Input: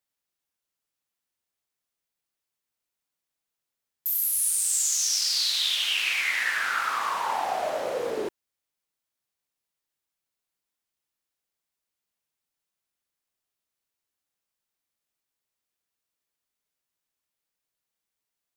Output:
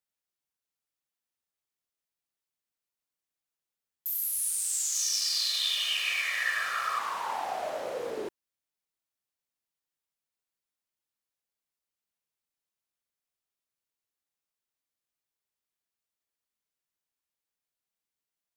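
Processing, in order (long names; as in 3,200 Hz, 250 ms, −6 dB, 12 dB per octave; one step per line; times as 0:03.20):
0:04.95–0:06.99: comb filter 1.7 ms, depth 75%
level −5.5 dB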